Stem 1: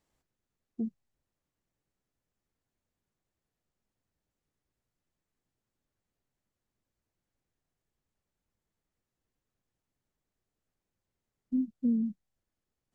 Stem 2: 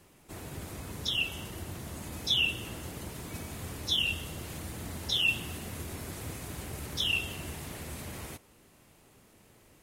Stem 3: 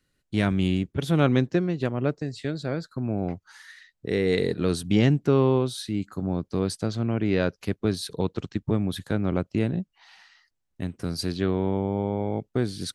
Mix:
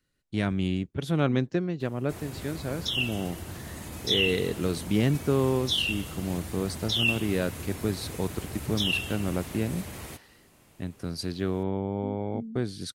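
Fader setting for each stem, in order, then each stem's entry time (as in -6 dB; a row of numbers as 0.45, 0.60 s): -10.5, +1.5, -4.0 dB; 0.50, 1.80, 0.00 s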